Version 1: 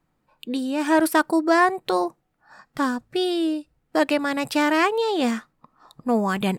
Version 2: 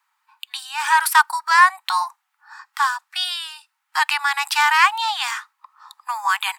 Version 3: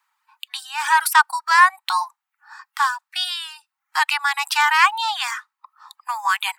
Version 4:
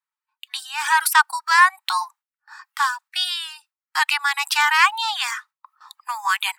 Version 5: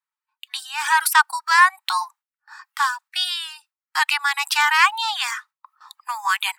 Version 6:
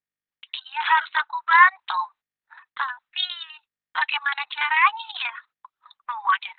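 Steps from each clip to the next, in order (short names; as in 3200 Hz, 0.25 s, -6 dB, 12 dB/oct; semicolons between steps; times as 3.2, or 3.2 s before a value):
steep high-pass 840 Hz 96 dB/oct; gain +8 dB
reverb removal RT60 0.53 s
gate with hold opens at -41 dBFS; HPF 1100 Hz 6 dB/oct; gain +1.5 dB
nothing audible
gate -46 dBFS, range -26 dB; gain -1 dB; Opus 6 kbps 48000 Hz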